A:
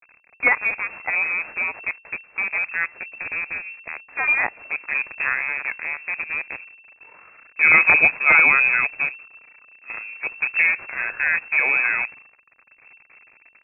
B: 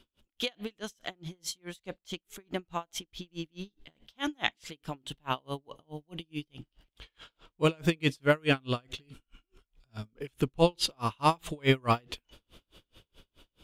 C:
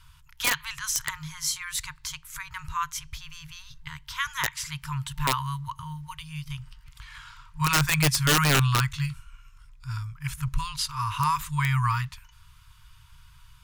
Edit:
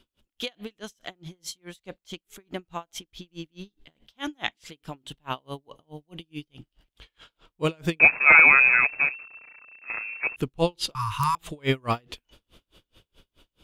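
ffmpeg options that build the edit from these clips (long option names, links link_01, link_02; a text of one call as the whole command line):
ffmpeg -i take0.wav -i take1.wav -i take2.wav -filter_complex "[1:a]asplit=3[link_01][link_02][link_03];[link_01]atrim=end=8.002[link_04];[0:a]atrim=start=7.998:end=10.362[link_05];[link_02]atrim=start=10.358:end=10.952[link_06];[2:a]atrim=start=10.948:end=11.352[link_07];[link_03]atrim=start=11.348[link_08];[link_04][link_05]acrossfade=duration=0.004:curve1=hsin:curve2=hsin[link_09];[link_09][link_06]acrossfade=duration=0.004:curve1=hsin:curve2=hsin[link_10];[link_10][link_07]acrossfade=duration=0.004:curve1=hsin:curve2=hsin[link_11];[link_11][link_08]acrossfade=duration=0.004:curve1=hsin:curve2=hsin" out.wav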